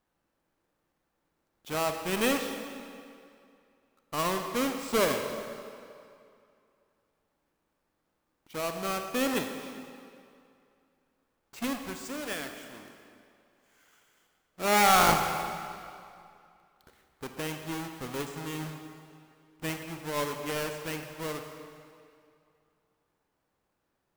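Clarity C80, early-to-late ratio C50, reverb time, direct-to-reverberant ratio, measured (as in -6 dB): 6.5 dB, 5.5 dB, 2.4 s, 5.0 dB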